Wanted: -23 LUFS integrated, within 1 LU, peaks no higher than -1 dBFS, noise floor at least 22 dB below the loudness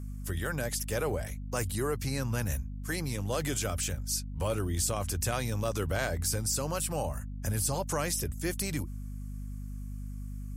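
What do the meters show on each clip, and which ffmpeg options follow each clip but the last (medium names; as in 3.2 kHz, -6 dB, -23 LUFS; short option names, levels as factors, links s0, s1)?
hum 50 Hz; highest harmonic 250 Hz; hum level -36 dBFS; loudness -32.5 LUFS; peak level -17.0 dBFS; loudness target -23.0 LUFS
-> -af "bandreject=f=50:t=h:w=4,bandreject=f=100:t=h:w=4,bandreject=f=150:t=h:w=4,bandreject=f=200:t=h:w=4,bandreject=f=250:t=h:w=4"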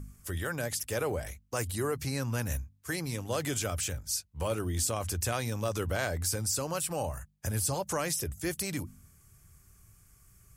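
hum not found; loudness -33.0 LUFS; peak level -17.0 dBFS; loudness target -23.0 LUFS
-> -af "volume=3.16"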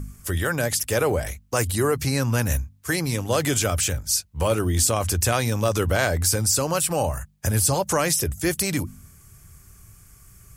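loudness -23.0 LUFS; peak level -7.0 dBFS; noise floor -53 dBFS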